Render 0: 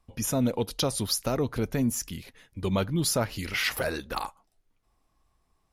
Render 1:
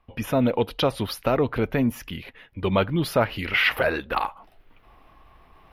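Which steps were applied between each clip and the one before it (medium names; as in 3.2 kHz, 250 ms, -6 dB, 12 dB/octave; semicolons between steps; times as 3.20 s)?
FFT filter 190 Hz 0 dB, 610 Hz +5 dB, 2.9 kHz +6 dB, 7.5 kHz -22 dB, 13 kHz -6 dB; reverse; upward compressor, threshold -41 dBFS; reverse; trim +2.5 dB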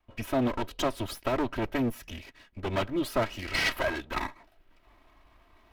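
comb filter that takes the minimum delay 3.1 ms; trim -5 dB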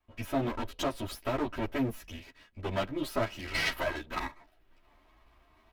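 endless flanger 10.8 ms +2 Hz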